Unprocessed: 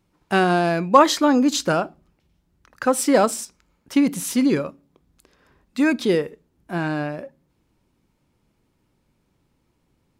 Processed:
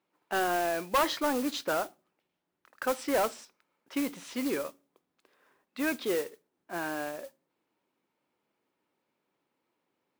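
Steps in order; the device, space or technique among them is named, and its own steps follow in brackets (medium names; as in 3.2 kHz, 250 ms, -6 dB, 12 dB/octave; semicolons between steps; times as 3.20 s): carbon microphone (band-pass 400–3500 Hz; saturation -15 dBFS, distortion -9 dB; modulation noise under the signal 13 dB); trim -6 dB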